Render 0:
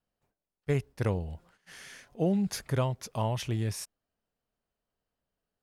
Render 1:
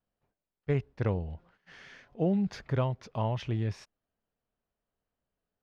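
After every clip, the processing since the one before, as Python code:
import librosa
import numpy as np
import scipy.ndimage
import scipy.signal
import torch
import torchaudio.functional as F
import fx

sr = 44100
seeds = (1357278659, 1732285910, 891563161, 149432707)

y = fx.air_absorb(x, sr, metres=210.0)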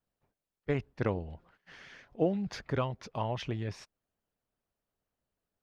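y = fx.hpss(x, sr, part='harmonic', gain_db=-9)
y = F.gain(torch.from_numpy(y), 3.0).numpy()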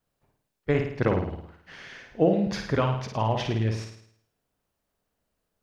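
y = fx.room_flutter(x, sr, wall_m=9.2, rt60_s=0.64)
y = F.gain(torch.from_numpy(y), 6.5).numpy()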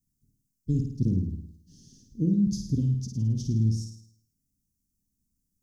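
y = scipy.signal.sosfilt(scipy.signal.ellip(3, 1.0, 50, [250.0, 5900.0], 'bandstop', fs=sr, output='sos'), x)
y = F.gain(torch.from_numpy(y), 3.5).numpy()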